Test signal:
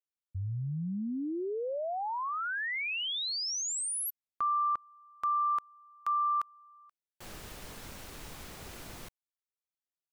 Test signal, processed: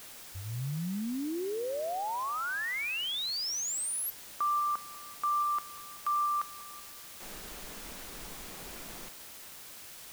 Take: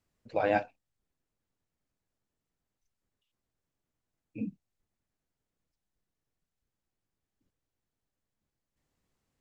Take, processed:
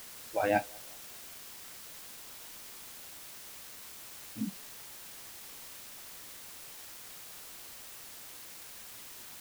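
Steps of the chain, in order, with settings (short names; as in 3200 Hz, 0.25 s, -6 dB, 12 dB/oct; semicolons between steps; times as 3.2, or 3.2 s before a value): band-limited delay 0.191 s, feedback 46%, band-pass 730 Hz, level -15 dB; spectral noise reduction 13 dB; requantised 8-bit, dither triangular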